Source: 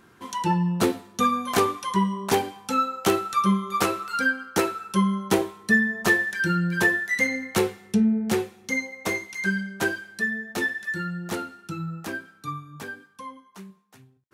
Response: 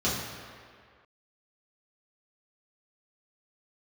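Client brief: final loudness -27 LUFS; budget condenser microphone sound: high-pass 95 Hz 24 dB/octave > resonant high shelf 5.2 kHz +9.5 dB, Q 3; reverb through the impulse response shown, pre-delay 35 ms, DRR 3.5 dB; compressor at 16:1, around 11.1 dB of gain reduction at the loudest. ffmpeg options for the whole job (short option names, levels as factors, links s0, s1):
-filter_complex "[0:a]acompressor=threshold=0.0447:ratio=16,asplit=2[s0][s1];[1:a]atrim=start_sample=2205,adelay=35[s2];[s1][s2]afir=irnorm=-1:irlink=0,volume=0.178[s3];[s0][s3]amix=inputs=2:normalize=0,highpass=f=95:w=0.5412,highpass=f=95:w=1.3066,highshelf=f=5200:t=q:w=3:g=9.5,volume=0.944"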